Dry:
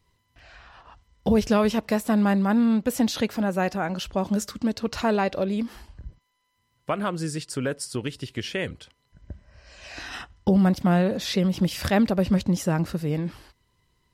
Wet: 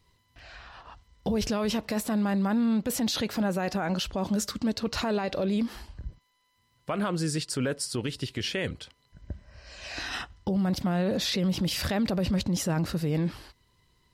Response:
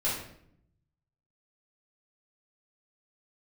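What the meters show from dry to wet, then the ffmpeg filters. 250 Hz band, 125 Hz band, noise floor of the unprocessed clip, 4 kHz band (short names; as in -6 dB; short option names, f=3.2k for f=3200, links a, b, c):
-4.5 dB, -3.5 dB, -71 dBFS, +1.5 dB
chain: -af "equalizer=f=4.2k:t=o:w=0.61:g=3.5,alimiter=limit=-22dB:level=0:latency=1:release=12,volume=1.5dB"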